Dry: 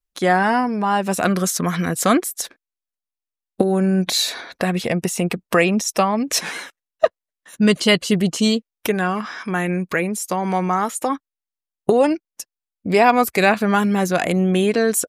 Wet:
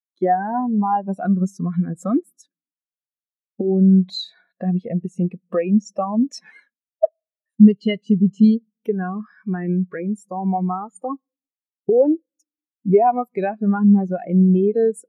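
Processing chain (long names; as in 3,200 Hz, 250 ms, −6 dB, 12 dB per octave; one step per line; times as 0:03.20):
downward compressor 3 to 1, threshold −21 dBFS, peak gain reduction 9.5 dB
on a send at −19.5 dB: convolution reverb RT60 1.2 s, pre-delay 3 ms
on the sum: every bin expanded away from the loudest bin 2.5 to 1
level +5 dB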